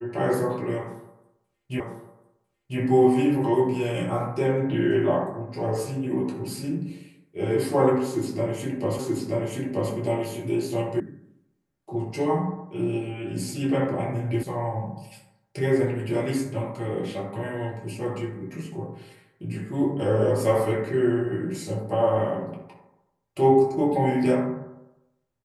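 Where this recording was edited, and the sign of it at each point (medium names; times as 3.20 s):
1.80 s: repeat of the last 1 s
8.99 s: repeat of the last 0.93 s
11.00 s: sound stops dead
14.43 s: sound stops dead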